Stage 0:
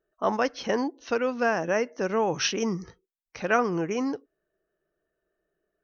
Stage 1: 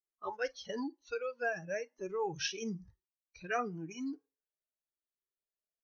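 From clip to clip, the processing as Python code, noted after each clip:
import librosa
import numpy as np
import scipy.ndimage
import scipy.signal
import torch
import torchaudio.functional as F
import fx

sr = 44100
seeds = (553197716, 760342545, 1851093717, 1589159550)

y = fx.rev_schroeder(x, sr, rt60_s=0.38, comb_ms=33, drr_db=17.5)
y = fx.noise_reduce_blind(y, sr, reduce_db=20)
y = fx.comb_cascade(y, sr, direction='rising', hz=0.99)
y = y * 10.0 ** (-5.0 / 20.0)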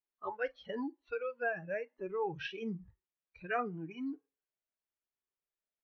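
y = scipy.signal.sosfilt(scipy.signal.butter(4, 2900.0, 'lowpass', fs=sr, output='sos'), x)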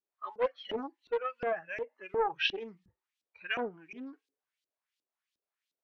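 y = fx.high_shelf(x, sr, hz=2200.0, db=10.5)
y = fx.filter_lfo_bandpass(y, sr, shape='saw_up', hz=2.8, low_hz=290.0, high_hz=4300.0, q=2.0)
y = fx.doppler_dist(y, sr, depth_ms=0.47)
y = y * 10.0 ** (8.5 / 20.0)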